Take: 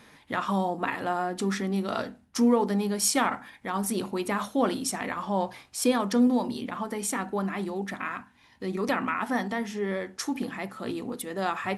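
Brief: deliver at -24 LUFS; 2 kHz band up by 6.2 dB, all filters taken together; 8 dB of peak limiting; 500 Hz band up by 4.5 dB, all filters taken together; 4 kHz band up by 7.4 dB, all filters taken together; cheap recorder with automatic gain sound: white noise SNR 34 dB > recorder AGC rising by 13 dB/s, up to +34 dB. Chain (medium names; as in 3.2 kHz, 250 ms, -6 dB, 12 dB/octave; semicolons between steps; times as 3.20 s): peaking EQ 500 Hz +5 dB; peaking EQ 2 kHz +5.5 dB; peaking EQ 4 kHz +8.5 dB; peak limiter -14 dBFS; white noise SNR 34 dB; recorder AGC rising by 13 dB/s, up to +34 dB; trim +3 dB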